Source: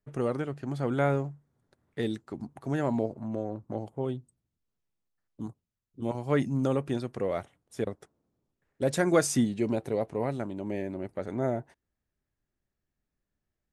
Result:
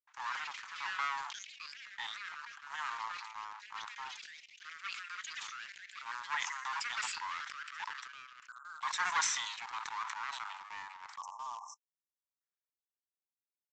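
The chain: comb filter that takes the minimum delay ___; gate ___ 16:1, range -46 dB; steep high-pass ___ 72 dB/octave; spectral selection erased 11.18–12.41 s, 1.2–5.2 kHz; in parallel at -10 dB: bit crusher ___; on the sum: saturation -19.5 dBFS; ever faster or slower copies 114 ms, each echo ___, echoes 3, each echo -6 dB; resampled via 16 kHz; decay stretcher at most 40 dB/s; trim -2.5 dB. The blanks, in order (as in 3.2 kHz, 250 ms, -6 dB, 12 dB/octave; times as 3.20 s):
0.52 ms, -51 dBFS, 880 Hz, 7-bit, +5 st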